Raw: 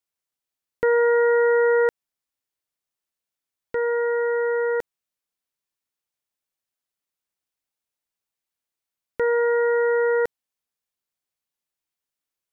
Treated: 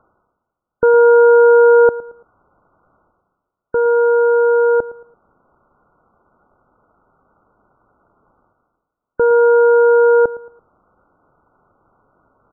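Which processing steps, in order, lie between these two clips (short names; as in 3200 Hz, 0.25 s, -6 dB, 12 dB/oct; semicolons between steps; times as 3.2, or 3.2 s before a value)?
G.711 law mismatch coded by mu; reverse; upward compressor, threshold -33 dBFS; reverse; brick-wall FIR low-pass 1500 Hz; on a send: feedback echo 0.112 s, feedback 36%, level -18 dB; on the sum: gain +8 dB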